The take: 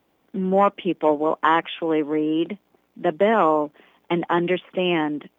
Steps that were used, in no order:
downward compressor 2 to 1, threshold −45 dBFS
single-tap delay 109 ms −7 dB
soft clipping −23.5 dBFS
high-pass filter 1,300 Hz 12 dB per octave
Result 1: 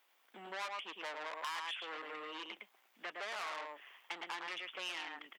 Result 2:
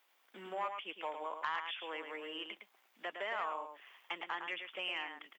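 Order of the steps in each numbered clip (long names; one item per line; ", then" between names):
single-tap delay, then soft clipping, then high-pass filter, then downward compressor
high-pass filter, then downward compressor, then single-tap delay, then soft clipping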